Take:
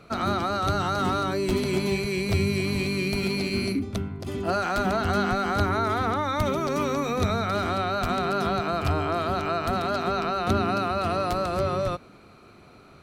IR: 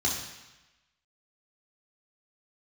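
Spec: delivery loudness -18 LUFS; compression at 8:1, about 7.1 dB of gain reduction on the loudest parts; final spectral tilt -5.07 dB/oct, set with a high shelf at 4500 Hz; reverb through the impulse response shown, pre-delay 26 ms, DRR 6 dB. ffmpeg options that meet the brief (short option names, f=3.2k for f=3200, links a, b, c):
-filter_complex "[0:a]highshelf=f=4.5k:g=6,acompressor=threshold=-26dB:ratio=8,asplit=2[a][b];[1:a]atrim=start_sample=2205,adelay=26[c];[b][c]afir=irnorm=-1:irlink=0,volume=-15dB[d];[a][d]amix=inputs=2:normalize=0,volume=11dB"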